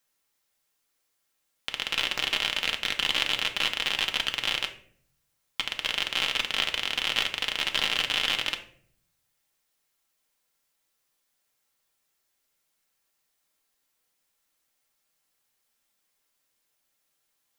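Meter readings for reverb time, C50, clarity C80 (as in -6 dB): 0.55 s, 11.5 dB, 16.0 dB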